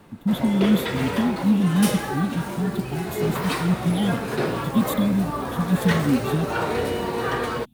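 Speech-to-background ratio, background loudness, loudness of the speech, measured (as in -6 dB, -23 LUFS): 3.0 dB, -27.0 LUFS, -24.0 LUFS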